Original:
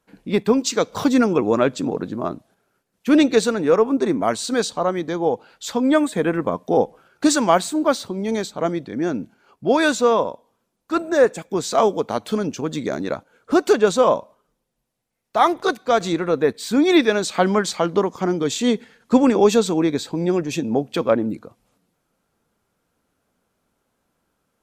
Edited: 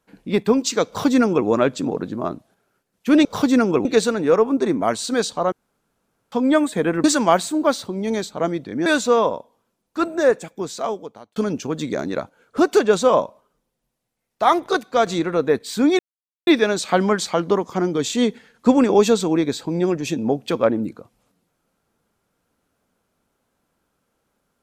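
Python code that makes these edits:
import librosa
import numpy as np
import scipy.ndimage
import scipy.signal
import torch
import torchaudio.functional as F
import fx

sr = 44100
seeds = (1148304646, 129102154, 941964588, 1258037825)

y = fx.edit(x, sr, fx.duplicate(start_s=0.87, length_s=0.6, to_s=3.25),
    fx.room_tone_fill(start_s=4.92, length_s=0.8),
    fx.cut(start_s=6.44, length_s=0.81),
    fx.cut(start_s=9.07, length_s=0.73),
    fx.fade_out_span(start_s=11.05, length_s=1.25),
    fx.insert_silence(at_s=16.93, length_s=0.48), tone=tone)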